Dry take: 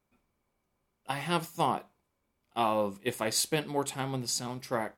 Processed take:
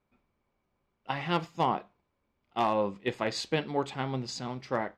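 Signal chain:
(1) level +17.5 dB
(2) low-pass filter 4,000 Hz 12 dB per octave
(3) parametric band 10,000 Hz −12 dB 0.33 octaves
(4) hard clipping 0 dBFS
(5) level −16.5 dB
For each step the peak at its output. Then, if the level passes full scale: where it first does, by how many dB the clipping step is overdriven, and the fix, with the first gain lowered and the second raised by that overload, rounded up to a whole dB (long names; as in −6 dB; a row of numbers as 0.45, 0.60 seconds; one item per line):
+3.5, +3.5, +3.5, 0.0, −16.5 dBFS
step 1, 3.5 dB
step 1 +13.5 dB, step 5 −12.5 dB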